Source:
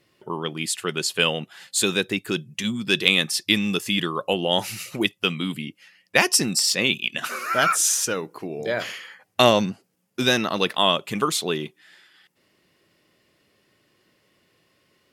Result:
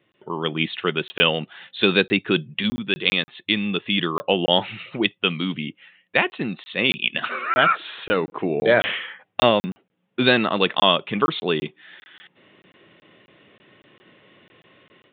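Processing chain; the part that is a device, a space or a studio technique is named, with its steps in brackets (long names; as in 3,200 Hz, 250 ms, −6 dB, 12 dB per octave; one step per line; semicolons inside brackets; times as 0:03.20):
call with lost packets (high-pass filter 110 Hz 12 dB per octave; downsampling to 8,000 Hz; automatic gain control gain up to 13 dB; dropped packets random)
level −1 dB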